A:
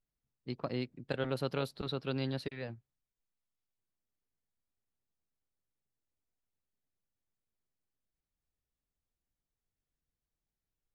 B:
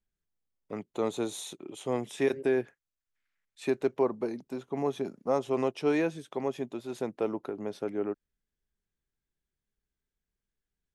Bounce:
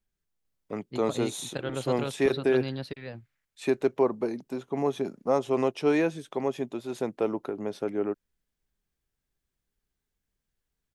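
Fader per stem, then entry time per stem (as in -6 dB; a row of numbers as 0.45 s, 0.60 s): +1.5 dB, +3.0 dB; 0.45 s, 0.00 s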